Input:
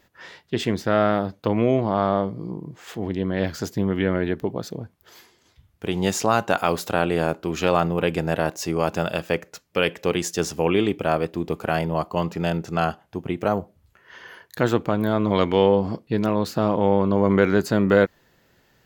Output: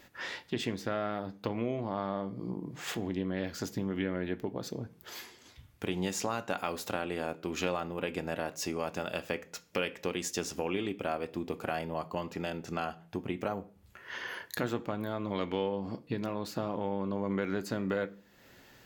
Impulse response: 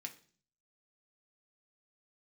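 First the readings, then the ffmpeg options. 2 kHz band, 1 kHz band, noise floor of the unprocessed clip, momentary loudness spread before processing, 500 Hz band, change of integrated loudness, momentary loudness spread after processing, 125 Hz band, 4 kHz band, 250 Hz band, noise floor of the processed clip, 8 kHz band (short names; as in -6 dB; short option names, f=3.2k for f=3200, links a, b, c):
-10.0 dB, -12.5 dB, -62 dBFS, 10 LU, -13.0 dB, -12.5 dB, 6 LU, -13.5 dB, -8.5 dB, -12.0 dB, -60 dBFS, -7.0 dB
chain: -filter_complex "[0:a]acompressor=threshold=-38dB:ratio=3,asplit=2[a][b];[1:a]atrim=start_sample=2205[c];[b][c]afir=irnorm=-1:irlink=0,volume=1dB[d];[a][d]amix=inputs=2:normalize=0"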